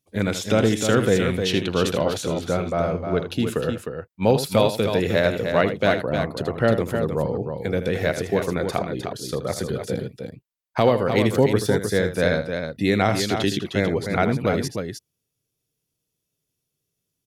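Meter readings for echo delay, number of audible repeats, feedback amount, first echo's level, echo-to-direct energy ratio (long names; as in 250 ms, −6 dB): 79 ms, 2, repeats not evenly spaced, −11.0 dB, −5.0 dB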